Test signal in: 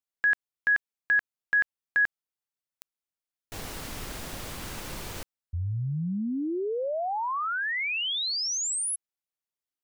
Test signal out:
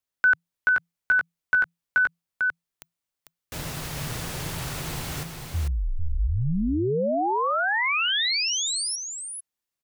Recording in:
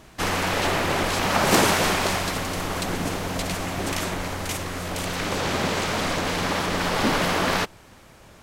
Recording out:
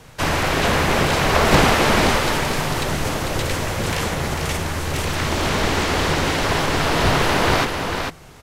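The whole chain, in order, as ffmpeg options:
-filter_complex "[0:a]acrossover=split=4500[a][b];[b]acompressor=threshold=-34dB:ratio=4:attack=1:release=60[c];[a][c]amix=inputs=2:normalize=0,afreqshift=-170,aecho=1:1:447:0.531,volume=4.5dB"

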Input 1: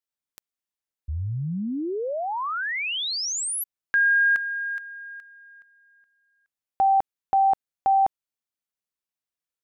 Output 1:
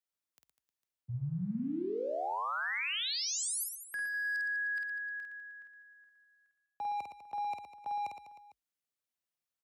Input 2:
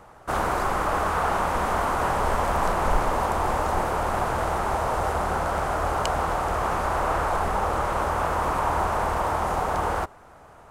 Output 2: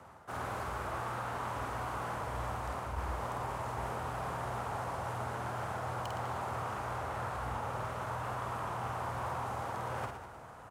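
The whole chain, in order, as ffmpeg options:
-af "areverse,acompressor=threshold=-31dB:ratio=12:attack=13:release=692:knee=6:detection=peak,areverse,asoftclip=type=hard:threshold=-30.5dB,afreqshift=45,aecho=1:1:50|115|199.5|309.4|452.2:0.631|0.398|0.251|0.158|0.1,volume=-4dB"

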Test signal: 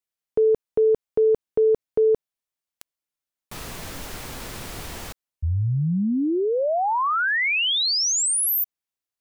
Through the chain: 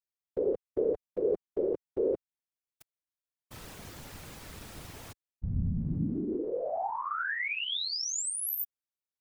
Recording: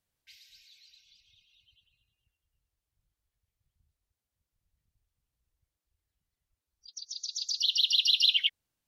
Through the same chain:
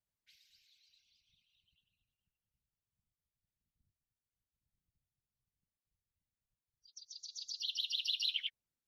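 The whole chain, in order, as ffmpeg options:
-af "highpass=f=58:p=1,afftfilt=real='hypot(re,im)*cos(2*PI*random(0))':imag='hypot(re,im)*sin(2*PI*random(1))':win_size=512:overlap=0.75,lowshelf=f=160:g=7,volume=-5.5dB"

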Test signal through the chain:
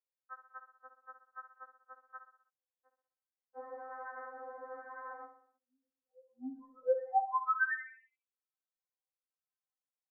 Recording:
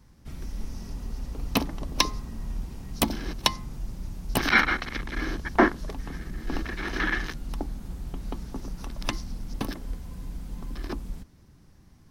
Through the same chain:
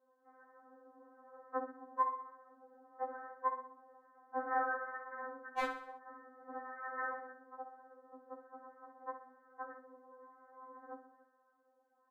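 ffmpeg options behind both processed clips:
-filter_complex "[0:a]lowpass=1.3k,aemphasis=mode=production:type=75fm,asoftclip=type=tanh:threshold=-17.5dB,asuperpass=centerf=740:order=20:qfactor=0.51,acrossover=split=720[a][b];[a]aeval=exprs='val(0)*(1-0.7/2+0.7/2*cos(2*PI*1.1*n/s))':c=same[c];[b]aeval=exprs='val(0)*(1-0.7/2-0.7/2*cos(2*PI*1.1*n/s))':c=same[d];[c][d]amix=inputs=2:normalize=0,aeval=exprs='0.0841*(abs(mod(val(0)/0.0841+3,4)-2)-1)':c=same,asplit=2[e][f];[f]aecho=0:1:63|126|189|252|315:0.316|0.158|0.0791|0.0395|0.0198[g];[e][g]amix=inputs=2:normalize=0,afftfilt=real='re*3.46*eq(mod(b,12),0)':imag='im*3.46*eq(mod(b,12),0)':win_size=2048:overlap=0.75,volume=2dB"

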